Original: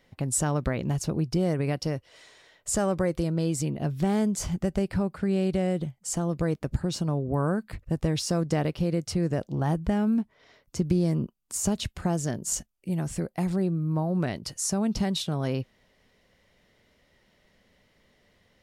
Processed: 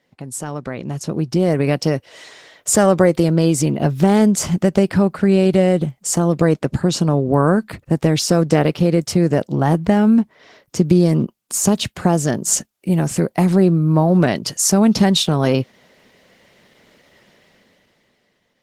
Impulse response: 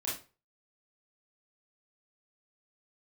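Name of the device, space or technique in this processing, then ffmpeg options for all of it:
video call: -filter_complex "[0:a]asplit=3[a][b][c];[a]afade=t=out:st=6.4:d=0.02[d];[b]lowpass=12k,afade=t=in:st=6.4:d=0.02,afade=t=out:st=7.65:d=0.02[e];[c]afade=t=in:st=7.65:d=0.02[f];[d][e][f]amix=inputs=3:normalize=0,highpass=150,dynaudnorm=f=150:g=17:m=16dB" -ar 48000 -c:a libopus -b:a 16k

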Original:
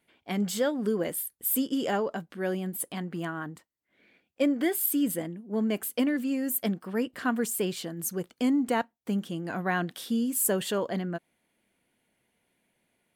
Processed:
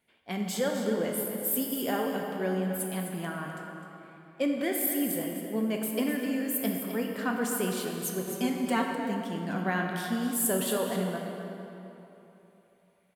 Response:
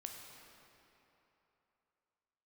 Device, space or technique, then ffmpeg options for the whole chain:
cave: -filter_complex "[0:a]aecho=1:1:256:0.316[a];[1:a]atrim=start_sample=2205[b];[a][b]afir=irnorm=-1:irlink=0,equalizer=f=310:t=o:w=0.26:g=-5.5,asettb=1/sr,asplit=3[c][d][e];[c]atrim=end=8.274[f];[d]atrim=start=8.27:end=8.95,asetpts=PTS-STARTPTS,afade=t=in:d=0.004:c=qsin,afade=t=out:st=0.676:d=0.004:c=qsin,aecho=1:1:5.2:0.93,atrim=end_sample=29988[g];[e]atrim=start=8.946[h];[f][g]acrossfade=d=0.004:c1=hsin:c2=qsin[i];[i][h]acrossfade=d=0.004:c1=qsin:c2=hsin,volume=3dB"

